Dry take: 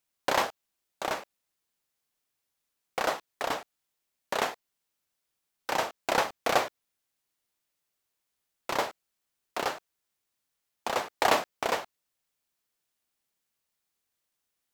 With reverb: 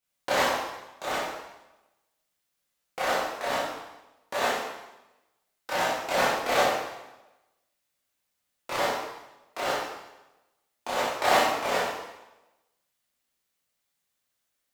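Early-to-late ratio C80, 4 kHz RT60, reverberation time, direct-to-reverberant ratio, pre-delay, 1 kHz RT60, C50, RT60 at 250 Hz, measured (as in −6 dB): 3.0 dB, 0.95 s, 1.0 s, −9.5 dB, 7 ms, 1.0 s, 0.0 dB, 1.0 s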